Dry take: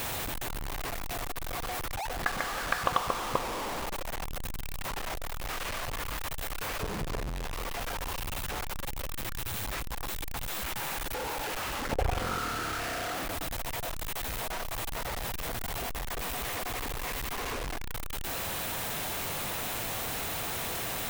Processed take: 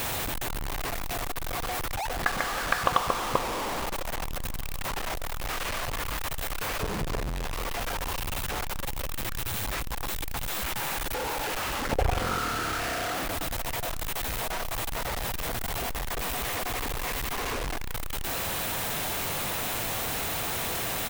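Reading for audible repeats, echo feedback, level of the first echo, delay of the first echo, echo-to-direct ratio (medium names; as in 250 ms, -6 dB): 2, 41%, -23.5 dB, 830 ms, -22.5 dB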